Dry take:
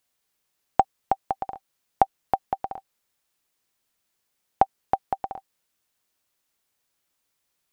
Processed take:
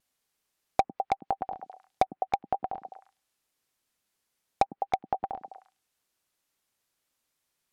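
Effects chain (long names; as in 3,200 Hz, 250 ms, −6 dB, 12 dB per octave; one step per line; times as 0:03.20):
pitch vibrato 1.8 Hz 44 cents
echo through a band-pass that steps 103 ms, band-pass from 230 Hz, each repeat 1.4 octaves, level −5.5 dB
treble cut that deepens with the level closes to 1,700 Hz, closed at −23.5 dBFS
in parallel at −7 dB: wrap-around overflow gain 11 dB
on the sum: treble cut that deepens with the level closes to 2,900 Hz, closed at −20 dBFS
level −5.5 dB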